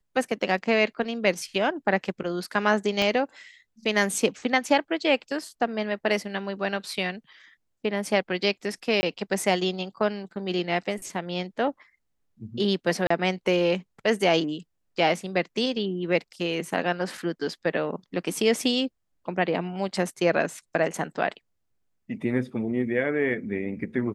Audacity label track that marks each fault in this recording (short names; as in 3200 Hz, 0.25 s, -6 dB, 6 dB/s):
3.020000	3.020000	pop -13 dBFS
9.010000	9.030000	gap 20 ms
13.070000	13.100000	gap 34 ms